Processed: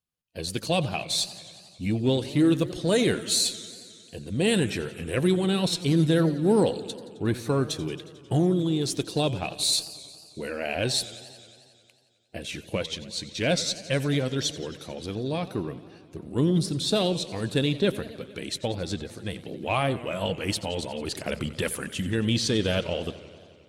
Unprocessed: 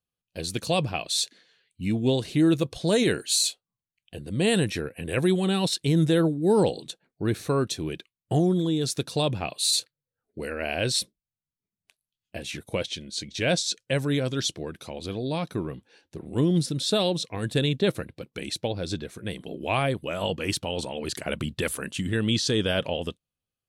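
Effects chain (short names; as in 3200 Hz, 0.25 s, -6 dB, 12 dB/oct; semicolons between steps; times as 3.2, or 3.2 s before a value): bin magnitudes rounded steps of 15 dB; added harmonics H 8 -36 dB, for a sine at -12 dBFS; warbling echo 90 ms, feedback 76%, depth 171 cents, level -17 dB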